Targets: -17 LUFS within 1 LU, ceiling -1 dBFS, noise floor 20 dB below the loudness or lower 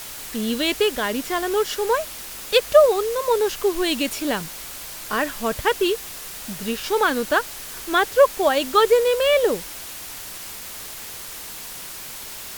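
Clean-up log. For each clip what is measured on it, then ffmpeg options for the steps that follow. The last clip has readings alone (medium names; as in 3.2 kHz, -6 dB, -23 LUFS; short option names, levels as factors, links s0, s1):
noise floor -36 dBFS; noise floor target -41 dBFS; loudness -21.0 LUFS; peak level -3.0 dBFS; loudness target -17.0 LUFS
-> -af "afftdn=nr=6:nf=-36"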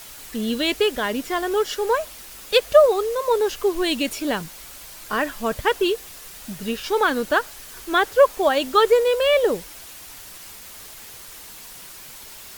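noise floor -41 dBFS; loudness -21.0 LUFS; peak level -3.0 dBFS; loudness target -17.0 LUFS
-> -af "volume=1.58,alimiter=limit=0.891:level=0:latency=1"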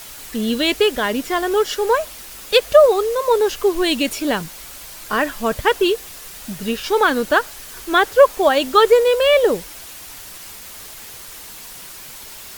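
loudness -17.0 LUFS; peak level -1.0 dBFS; noise floor -37 dBFS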